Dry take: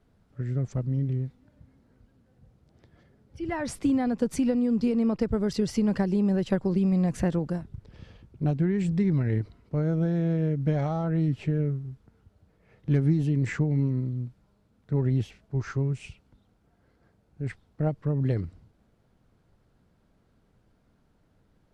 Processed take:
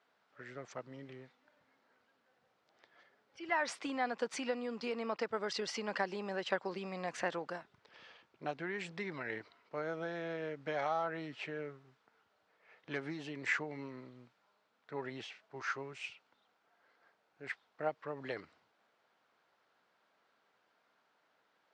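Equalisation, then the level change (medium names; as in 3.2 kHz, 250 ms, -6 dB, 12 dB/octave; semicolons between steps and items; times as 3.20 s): Gaussian low-pass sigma 1.5 samples; high-pass 920 Hz 12 dB/octave; +4.0 dB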